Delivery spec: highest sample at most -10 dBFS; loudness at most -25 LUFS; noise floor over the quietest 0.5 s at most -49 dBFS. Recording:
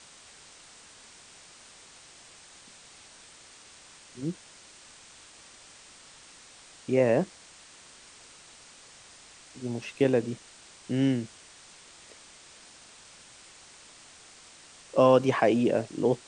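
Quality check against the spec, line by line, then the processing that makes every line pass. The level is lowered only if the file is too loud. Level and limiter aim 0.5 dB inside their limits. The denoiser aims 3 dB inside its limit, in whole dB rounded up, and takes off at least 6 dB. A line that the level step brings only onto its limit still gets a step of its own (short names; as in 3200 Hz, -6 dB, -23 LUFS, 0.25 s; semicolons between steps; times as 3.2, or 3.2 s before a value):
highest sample -8.5 dBFS: fail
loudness -26.5 LUFS: OK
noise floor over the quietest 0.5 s -52 dBFS: OK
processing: limiter -10.5 dBFS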